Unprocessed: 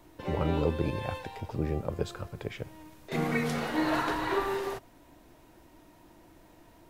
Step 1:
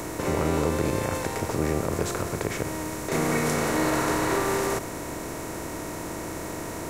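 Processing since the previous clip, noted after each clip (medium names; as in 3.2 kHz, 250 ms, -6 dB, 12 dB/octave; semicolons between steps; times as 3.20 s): spectral levelling over time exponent 0.4; resonant high shelf 5.1 kHz +9 dB, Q 1.5; in parallel at 0 dB: peak limiter -16.5 dBFS, peak gain reduction 8.5 dB; on the sum: trim -5.5 dB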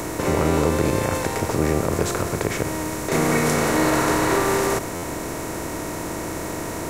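buffer glitch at 4.95 s, samples 512, times 6; trim +5 dB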